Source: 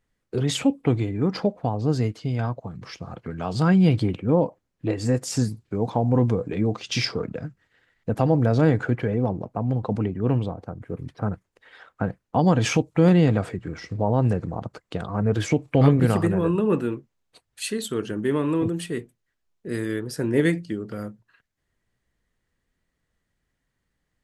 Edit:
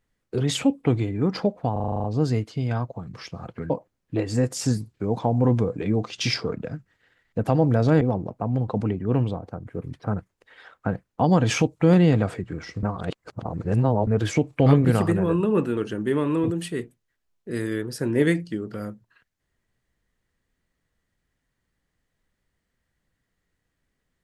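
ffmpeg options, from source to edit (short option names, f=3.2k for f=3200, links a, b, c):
-filter_complex "[0:a]asplit=14[a][b][c][d][e][f][g][h][i][j][k][l][m][n];[a]atrim=end=1.762[o];[b]atrim=start=1.718:end=1.762[p];[c]atrim=start=1.718:end=1.762[q];[d]atrim=start=1.718:end=1.762[r];[e]atrim=start=1.718:end=1.762[s];[f]atrim=start=1.718:end=1.762[t];[g]atrim=start=1.718:end=1.762[u];[h]atrim=start=1.718:end=1.762[v];[i]atrim=start=1.718:end=3.382[w];[j]atrim=start=4.408:end=8.722[x];[k]atrim=start=9.158:end=13.982[y];[l]atrim=start=13.978:end=15.222,asetpts=PTS-STARTPTS,areverse[z];[m]atrim=start=15.218:end=16.922[aa];[n]atrim=start=17.948[ab];[o][p]acrossfade=d=0.004:c1=hsin:c2=hsin[ac];[ac][q]acrossfade=d=0.004:c1=hsin:c2=hsin[ad];[ad][r]acrossfade=d=0.004:c1=hsin:c2=hsin[ae];[ae][s]acrossfade=d=0.004:c1=hsin:c2=hsin[af];[af][t]acrossfade=d=0.004:c1=hsin:c2=hsin[ag];[ag][u]acrossfade=d=0.004:c1=hsin:c2=hsin[ah];[ah][v]acrossfade=d=0.004:c1=hsin:c2=hsin[ai];[ai][w]acrossfade=d=0.004:c1=hsin:c2=hsin[aj];[aj][x]acrossfade=d=0.004:c1=hsin:c2=hsin[ak];[ak][y]acrossfade=d=0.004:c1=hsin:c2=hsin[al];[al][z]acrossfade=d=0.004:c1=hsin:c2=hsin[am];[am][aa]acrossfade=d=0.004:c1=hsin:c2=hsin[an];[an][ab]acrossfade=d=0.004:c1=hsin:c2=hsin"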